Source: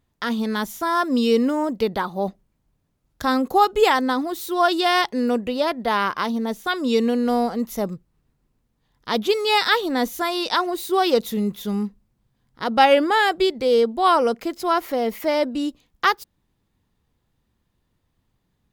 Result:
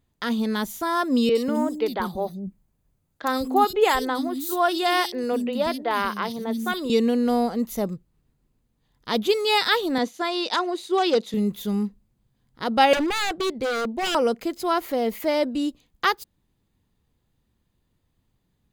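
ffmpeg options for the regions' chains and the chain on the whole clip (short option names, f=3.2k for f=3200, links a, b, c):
-filter_complex "[0:a]asettb=1/sr,asplit=3[a][b][c];[a]atrim=end=1.294[d];[b]atrim=start=1.29:end=6.9,asetpts=PTS-STARTPTS,afade=t=in:d=0.004:c=qsin,afade=t=out:st=5.606:d=0.004:c=qsin,highshelf=f=9.8k:g=4.5,acrossover=split=270|3600[e][f][g];[g]adelay=60[h];[e]adelay=190[i];[i][f][h]amix=inputs=3:normalize=0,atrim=end_sample=247401[j];[c]atrim=start=6.896[k];[d][j]acrossfade=d=0.004:c1=hsin:c2=qsin[l];[l][k]acrossfade=d=0.004:c1=qsin:c2=hsin,asettb=1/sr,asplit=3[m][n][o];[m]atrim=end=9.984[p];[n]atrim=start=9.98:end=11.34,asetpts=PTS-STARTPTS,afade=t=in:d=0.004:c=qsin,afade=t=out:st=1.356:d=0.004:c=qsin,agate=range=-33dB:threshold=-31dB:ratio=3:release=100:detection=peak,aeval=exprs='0.299*(abs(mod(val(0)/0.299+3,4)-2)-1)':c=same,highpass=220,lowpass=6.2k[q];[o]atrim=start=11.336[r];[p][q]acrossfade=d=0.004:c1=hsin:c2=qsin[s];[s][r]acrossfade=d=0.004:c1=qsin:c2=hsin,asettb=1/sr,asplit=3[t][u][v];[t]atrim=end=12.934[w];[u]atrim=start=12.93:end=14.15,asetpts=PTS-STARTPTS,afade=t=in:d=0.004:c=qsin,afade=t=out:st=1.216:d=0.004:c=qsin,aemphasis=mode=reproduction:type=cd,aeval=exprs='0.126*(abs(mod(val(0)/0.126+3,4)-2)-1)':c=same[x];[v]atrim=start=14.146[y];[w][x]acrossfade=d=0.004:c1=hsin:c2=qsin[z];[z][y]acrossfade=d=0.004:c1=qsin:c2=hsin,equalizer=f=1.2k:t=o:w=2.1:g=-3.5,bandreject=f=5.5k:w=12"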